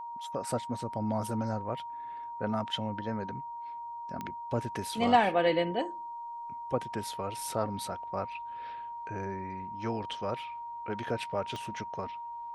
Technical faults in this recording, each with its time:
tone 940 Hz -38 dBFS
4.21 pop -23 dBFS
11.56 pop -26 dBFS

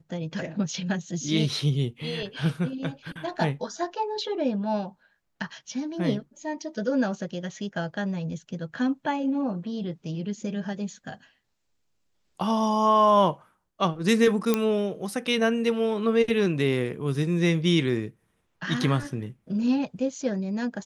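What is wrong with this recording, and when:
14.54 pop -8 dBFS

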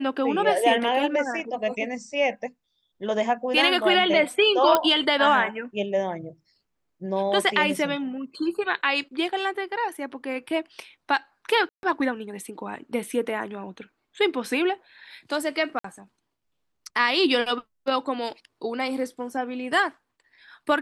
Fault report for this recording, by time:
4.75 pop -5 dBFS
11.69–11.83 gap 0.141 s
15.79–15.84 gap 54 ms

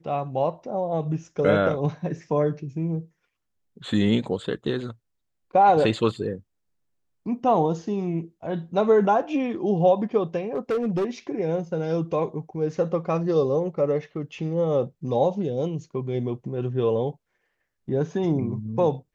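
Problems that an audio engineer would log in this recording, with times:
10.55–11.05 clipped -20.5 dBFS

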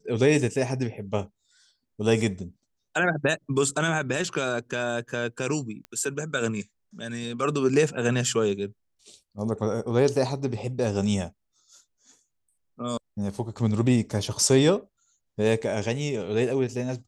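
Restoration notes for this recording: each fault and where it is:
5.85 pop -26 dBFS

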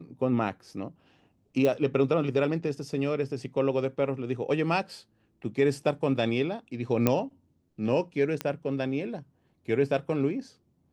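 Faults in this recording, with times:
1.65 pop -15 dBFS
7.07 pop -9 dBFS
8.41 pop -14 dBFS

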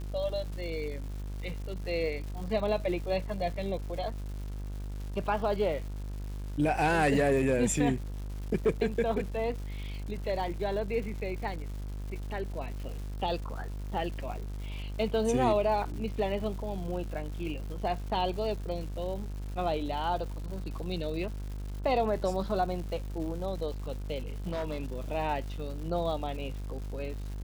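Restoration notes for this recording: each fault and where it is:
buzz 50 Hz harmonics 34 -37 dBFS
crackle 360/s -41 dBFS
24.46–24.94 clipped -29 dBFS

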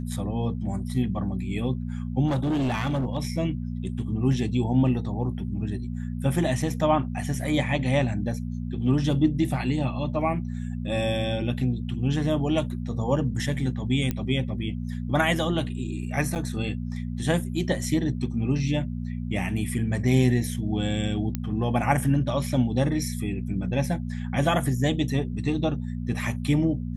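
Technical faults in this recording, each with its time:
hum 60 Hz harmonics 4 -31 dBFS
2.27–3.18 clipped -21.5 dBFS
14.11 pop -14 dBFS
16.35–16.36 gap 7.8 ms
21.35 pop -14 dBFS

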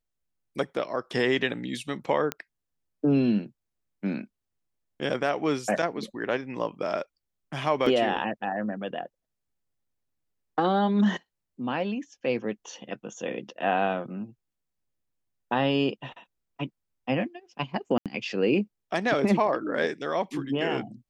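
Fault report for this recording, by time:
2.32 pop -13 dBFS
7.86 gap 3.8 ms
17.98–18.06 gap 77 ms

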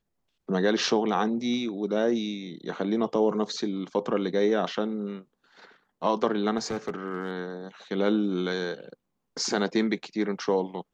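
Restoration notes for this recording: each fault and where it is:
6.57–7.39 clipped -25 dBFS

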